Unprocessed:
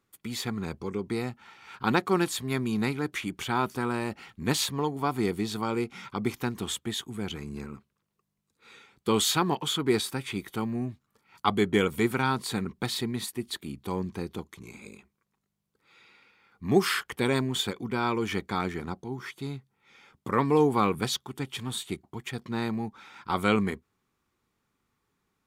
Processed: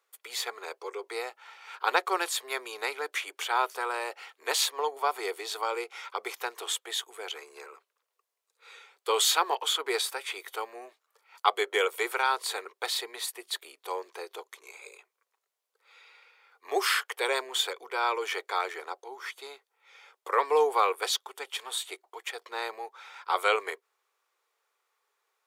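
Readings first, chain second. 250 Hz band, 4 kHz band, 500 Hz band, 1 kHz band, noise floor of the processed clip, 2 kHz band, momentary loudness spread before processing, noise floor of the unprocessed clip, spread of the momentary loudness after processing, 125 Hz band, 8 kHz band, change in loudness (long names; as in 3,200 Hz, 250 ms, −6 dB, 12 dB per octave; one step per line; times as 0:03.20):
−19.5 dB, +2.0 dB, −2.0 dB, +2.0 dB, −84 dBFS, +2.0 dB, 13 LU, −79 dBFS, 16 LU, below −40 dB, +2.0 dB, −1.0 dB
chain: Butterworth high-pass 440 Hz 48 dB per octave
level +2 dB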